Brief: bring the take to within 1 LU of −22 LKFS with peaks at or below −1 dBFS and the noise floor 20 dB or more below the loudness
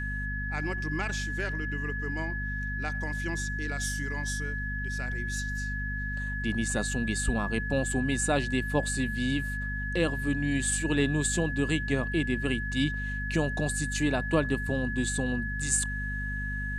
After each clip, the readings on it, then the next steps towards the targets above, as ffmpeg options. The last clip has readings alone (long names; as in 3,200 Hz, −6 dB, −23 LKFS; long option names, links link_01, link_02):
mains hum 50 Hz; hum harmonics up to 250 Hz; level of the hum −32 dBFS; interfering tone 1,700 Hz; level of the tone −34 dBFS; integrated loudness −30.0 LKFS; sample peak −12.5 dBFS; target loudness −22.0 LKFS
→ -af "bandreject=frequency=50:width_type=h:width=6,bandreject=frequency=100:width_type=h:width=6,bandreject=frequency=150:width_type=h:width=6,bandreject=frequency=200:width_type=h:width=6,bandreject=frequency=250:width_type=h:width=6"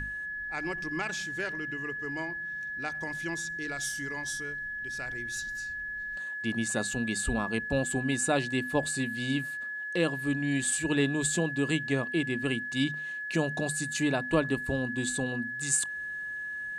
mains hum none found; interfering tone 1,700 Hz; level of the tone −34 dBFS
→ -af "bandreject=frequency=1700:width=30"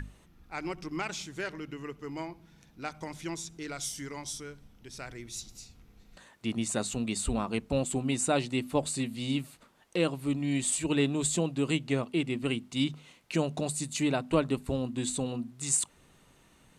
interfering tone none found; integrated loudness −32.0 LKFS; sample peak −12.0 dBFS; target loudness −22.0 LKFS
→ -af "volume=10dB"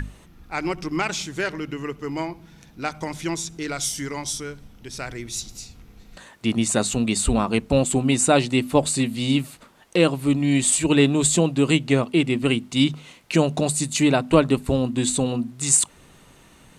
integrated loudness −22.0 LKFS; sample peak −2.0 dBFS; background noise floor −51 dBFS